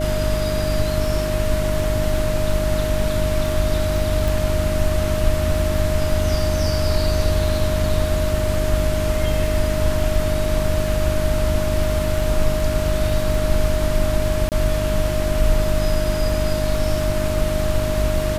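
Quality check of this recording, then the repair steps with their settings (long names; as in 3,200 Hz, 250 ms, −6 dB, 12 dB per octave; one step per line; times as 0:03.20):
surface crackle 23 per second −27 dBFS
mains hum 50 Hz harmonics 7 −24 dBFS
whistle 620 Hz −23 dBFS
0:04.28: click
0:14.49–0:14.52: drop-out 28 ms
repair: click removal
hum removal 50 Hz, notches 7
notch filter 620 Hz, Q 30
repair the gap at 0:14.49, 28 ms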